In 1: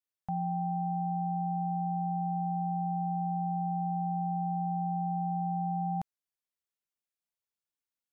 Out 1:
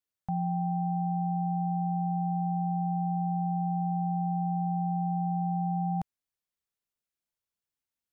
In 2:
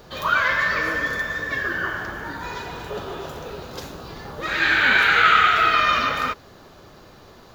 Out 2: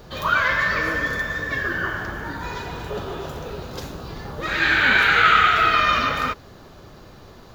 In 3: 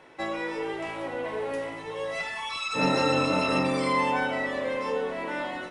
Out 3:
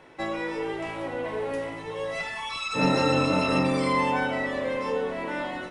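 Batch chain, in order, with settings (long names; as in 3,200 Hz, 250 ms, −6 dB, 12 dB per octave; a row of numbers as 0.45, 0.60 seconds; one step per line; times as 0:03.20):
low-shelf EQ 210 Hz +6.5 dB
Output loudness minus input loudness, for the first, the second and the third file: +2.5, −0.5, +1.0 LU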